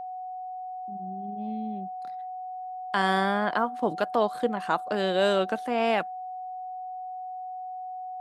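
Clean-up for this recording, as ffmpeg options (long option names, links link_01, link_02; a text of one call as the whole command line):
ffmpeg -i in.wav -af "bandreject=frequency=740:width=30" out.wav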